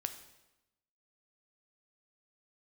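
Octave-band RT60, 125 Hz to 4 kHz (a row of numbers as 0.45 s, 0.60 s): 1.1 s, 1.1 s, 0.95 s, 0.95 s, 0.90 s, 0.85 s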